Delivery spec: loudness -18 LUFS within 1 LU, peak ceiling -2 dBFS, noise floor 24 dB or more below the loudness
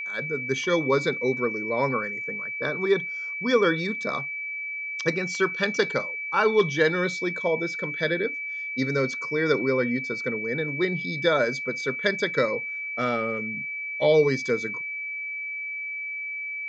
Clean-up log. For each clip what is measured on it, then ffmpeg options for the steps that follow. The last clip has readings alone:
steady tone 2300 Hz; tone level -30 dBFS; loudness -25.5 LUFS; peak -8.5 dBFS; loudness target -18.0 LUFS
-> -af "bandreject=f=2.3k:w=30"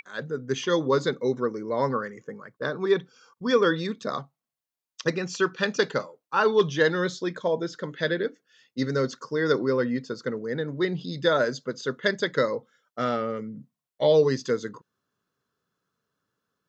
steady tone none; loudness -26.5 LUFS; peak -8.5 dBFS; loudness target -18.0 LUFS
-> -af "volume=8.5dB,alimiter=limit=-2dB:level=0:latency=1"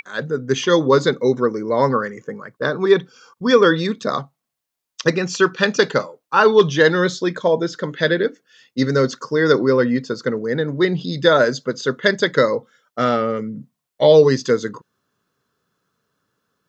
loudness -18.0 LUFS; peak -2.0 dBFS; noise floor -81 dBFS

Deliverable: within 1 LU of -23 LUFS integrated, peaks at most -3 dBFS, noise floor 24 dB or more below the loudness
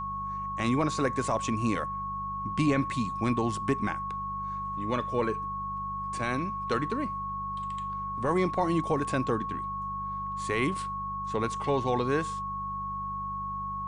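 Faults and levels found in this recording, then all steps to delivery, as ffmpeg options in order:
hum 50 Hz; harmonics up to 200 Hz; hum level -41 dBFS; steady tone 1100 Hz; tone level -32 dBFS; loudness -30.5 LUFS; peak -15.0 dBFS; loudness target -23.0 LUFS
-> -af "bandreject=f=50:t=h:w=4,bandreject=f=100:t=h:w=4,bandreject=f=150:t=h:w=4,bandreject=f=200:t=h:w=4"
-af "bandreject=f=1.1k:w=30"
-af "volume=7.5dB"

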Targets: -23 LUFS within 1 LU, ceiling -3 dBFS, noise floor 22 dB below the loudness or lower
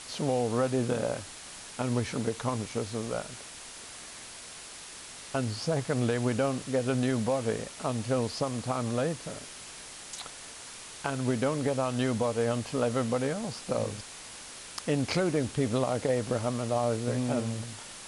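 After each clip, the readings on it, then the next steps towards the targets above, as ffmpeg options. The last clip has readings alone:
noise floor -45 dBFS; noise floor target -53 dBFS; loudness -30.5 LUFS; peak -13.0 dBFS; loudness target -23.0 LUFS
-> -af "afftdn=nr=8:nf=-45"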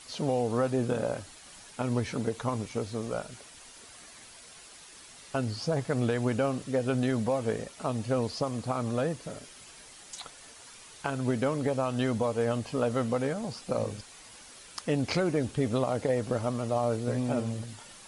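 noise floor -51 dBFS; noise floor target -53 dBFS
-> -af "afftdn=nr=6:nf=-51"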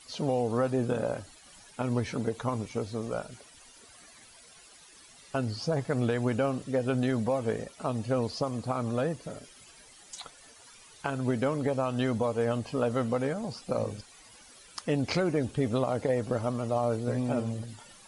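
noise floor -54 dBFS; loudness -30.5 LUFS; peak -13.5 dBFS; loudness target -23.0 LUFS
-> -af "volume=7.5dB"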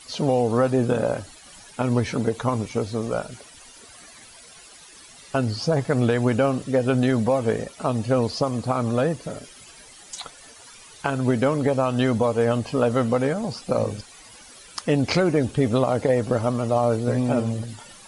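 loudness -23.0 LUFS; peak -6.0 dBFS; noise floor -47 dBFS

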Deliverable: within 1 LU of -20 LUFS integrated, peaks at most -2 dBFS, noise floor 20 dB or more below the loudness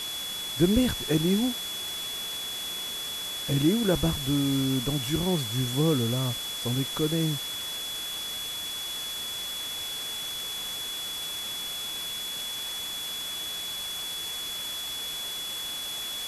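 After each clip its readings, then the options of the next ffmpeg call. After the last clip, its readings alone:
steady tone 3400 Hz; tone level -33 dBFS; noise floor -35 dBFS; noise floor target -49 dBFS; loudness -28.5 LUFS; peak -9.5 dBFS; loudness target -20.0 LUFS
-> -af "bandreject=f=3.4k:w=30"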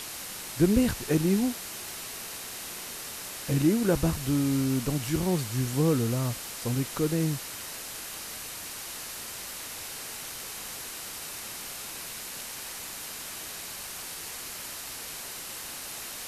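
steady tone none; noise floor -40 dBFS; noise floor target -51 dBFS
-> -af "afftdn=nr=11:nf=-40"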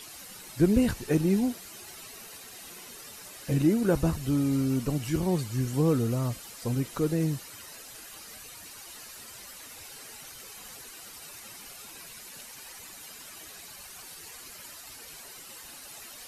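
noise floor -46 dBFS; noise floor target -48 dBFS
-> -af "afftdn=nr=6:nf=-46"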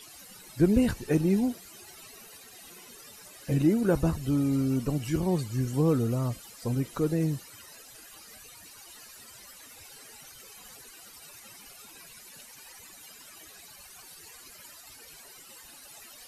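noise floor -50 dBFS; loudness -27.5 LUFS; peak -10.0 dBFS; loudness target -20.0 LUFS
-> -af "volume=7.5dB"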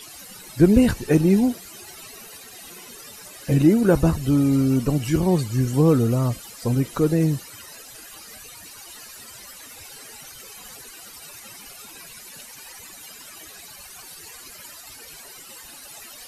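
loudness -20.0 LUFS; peak -2.5 dBFS; noise floor -43 dBFS

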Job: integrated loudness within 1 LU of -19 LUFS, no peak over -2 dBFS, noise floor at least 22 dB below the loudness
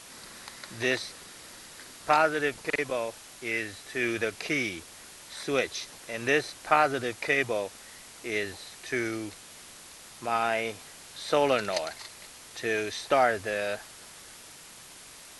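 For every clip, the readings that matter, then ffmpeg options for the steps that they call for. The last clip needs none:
noise floor -49 dBFS; noise floor target -51 dBFS; loudness -29.0 LUFS; peak -8.0 dBFS; loudness target -19.0 LUFS
-> -af "afftdn=nr=6:nf=-49"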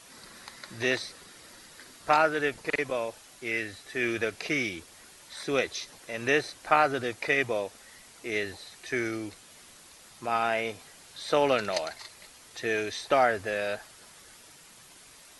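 noise floor -53 dBFS; loudness -29.0 LUFS; peak -8.0 dBFS; loudness target -19.0 LUFS
-> -af "volume=10dB,alimiter=limit=-2dB:level=0:latency=1"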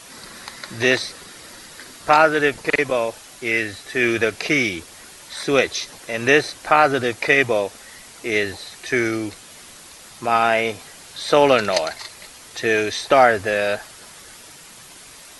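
loudness -19.5 LUFS; peak -2.0 dBFS; noise floor -43 dBFS

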